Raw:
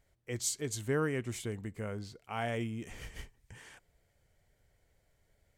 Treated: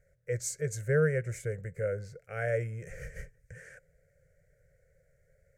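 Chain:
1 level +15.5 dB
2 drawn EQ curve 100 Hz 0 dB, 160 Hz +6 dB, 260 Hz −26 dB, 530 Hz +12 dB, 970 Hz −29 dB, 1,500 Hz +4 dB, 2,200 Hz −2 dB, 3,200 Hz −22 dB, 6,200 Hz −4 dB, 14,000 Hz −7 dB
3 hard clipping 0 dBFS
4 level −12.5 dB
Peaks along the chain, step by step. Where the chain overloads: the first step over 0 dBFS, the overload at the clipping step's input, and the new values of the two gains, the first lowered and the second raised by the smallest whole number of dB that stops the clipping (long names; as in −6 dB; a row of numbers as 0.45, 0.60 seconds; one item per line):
−5.5, −4.0, −4.0, −16.5 dBFS
no step passes full scale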